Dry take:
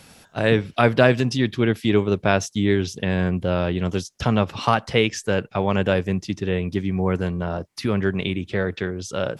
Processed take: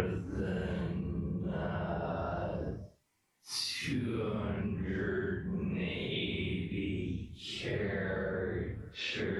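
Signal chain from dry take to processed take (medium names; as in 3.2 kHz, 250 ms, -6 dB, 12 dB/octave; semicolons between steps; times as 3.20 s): Paulstretch 5.5×, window 0.05 s, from 7.13 s; compression 6:1, threshold -33 dBFS, peak gain reduction 16.5 dB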